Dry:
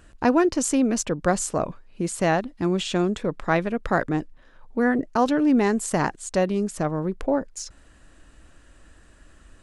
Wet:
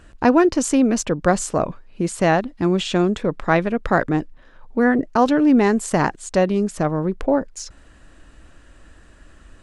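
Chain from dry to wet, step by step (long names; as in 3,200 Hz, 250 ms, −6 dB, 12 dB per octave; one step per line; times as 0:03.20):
high-shelf EQ 7,900 Hz −8 dB
level +4.5 dB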